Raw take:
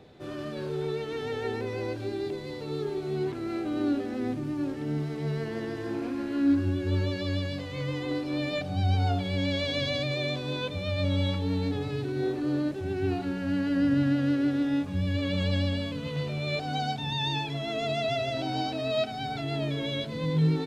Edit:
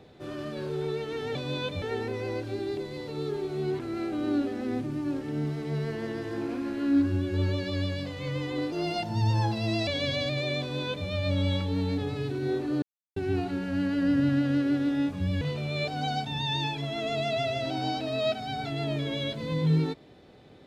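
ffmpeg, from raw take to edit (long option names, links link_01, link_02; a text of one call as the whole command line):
ffmpeg -i in.wav -filter_complex "[0:a]asplit=8[link_01][link_02][link_03][link_04][link_05][link_06][link_07][link_08];[link_01]atrim=end=1.352[link_09];[link_02]atrim=start=10.338:end=10.812[link_10];[link_03]atrim=start=1.348:end=8.254[link_11];[link_04]atrim=start=8.25:end=9.61,asetpts=PTS-STARTPTS,asetrate=52038,aresample=44100,atrim=end_sample=50827,asetpts=PTS-STARTPTS[link_12];[link_05]atrim=start=9.606:end=12.56,asetpts=PTS-STARTPTS,afade=type=out:start_time=2.95:duration=0.004:curve=hsin[link_13];[link_06]atrim=start=12.56:end=12.9,asetpts=PTS-STARTPTS,volume=0[link_14];[link_07]atrim=start=12.9:end=15.152,asetpts=PTS-STARTPTS,afade=type=in:duration=0.004:curve=hsin[link_15];[link_08]atrim=start=16.128[link_16];[link_09][link_10]acrossfade=duration=0.004:curve1=hsin:curve2=hsin[link_17];[link_17][link_11]acrossfade=duration=0.004:curve1=hsin:curve2=hsin[link_18];[link_18][link_12]acrossfade=duration=0.004:curve1=hsin:curve2=hsin[link_19];[link_13][link_14][link_15]concat=n=3:v=0:a=1[link_20];[link_19][link_20]acrossfade=duration=0.004:curve1=hsin:curve2=hsin[link_21];[link_21][link_16]acrossfade=duration=0.004:curve1=hsin:curve2=hsin" out.wav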